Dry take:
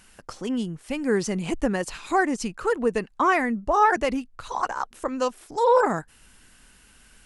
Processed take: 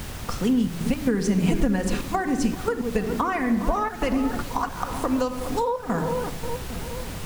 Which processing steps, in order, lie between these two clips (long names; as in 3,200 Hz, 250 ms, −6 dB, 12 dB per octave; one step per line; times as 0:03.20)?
tape delay 409 ms, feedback 60%, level −13.5 dB, low-pass 1,200 Hz
rectangular room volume 3,900 cubic metres, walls furnished, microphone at 1.8 metres
gate pattern "x.xxx.x.xxxxxx" 112 BPM −12 dB
background noise pink −42 dBFS
low-shelf EQ 450 Hz −3 dB
downward compressor 16 to 1, threshold −27 dBFS, peak gain reduction 16.5 dB
bass and treble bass +10 dB, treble −1 dB
level +5 dB